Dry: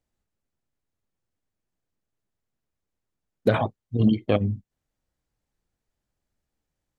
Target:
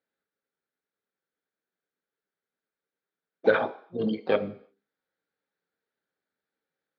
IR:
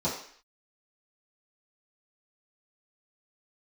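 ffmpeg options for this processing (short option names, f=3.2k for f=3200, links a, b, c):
-filter_complex "[0:a]asplit=2[a][b];[b]asetrate=66075,aresample=44100,atempo=0.66742,volume=-14dB[c];[a][c]amix=inputs=2:normalize=0,highpass=390,equalizer=f=450:t=q:w=4:g=6,equalizer=f=650:t=q:w=4:g=-5,equalizer=f=1k:t=q:w=4:g=-7,equalizer=f=1.5k:t=q:w=4:g=7,equalizer=f=2.9k:t=q:w=4:g=-7,lowpass=f=4k:w=0.5412,lowpass=f=4k:w=1.3066,asplit=2[d][e];[1:a]atrim=start_sample=2205,highshelf=f=3.2k:g=11.5[f];[e][f]afir=irnorm=-1:irlink=0,volume=-20dB[g];[d][g]amix=inputs=2:normalize=0"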